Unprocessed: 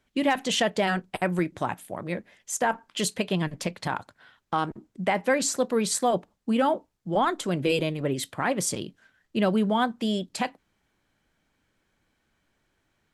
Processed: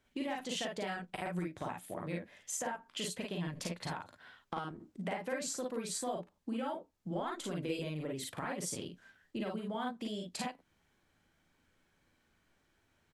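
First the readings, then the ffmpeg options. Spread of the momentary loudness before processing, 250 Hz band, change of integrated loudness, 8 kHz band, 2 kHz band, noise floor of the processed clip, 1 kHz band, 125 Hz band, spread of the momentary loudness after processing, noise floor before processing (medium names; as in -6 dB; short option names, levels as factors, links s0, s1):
9 LU, -12.5 dB, -12.5 dB, -10.0 dB, -13.5 dB, -75 dBFS, -13.5 dB, -10.5 dB, 6 LU, -74 dBFS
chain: -filter_complex "[0:a]acompressor=threshold=0.0178:ratio=5,asplit=2[s0][s1];[s1]aecho=0:1:40|52:0.631|0.708[s2];[s0][s2]amix=inputs=2:normalize=0,volume=0.631"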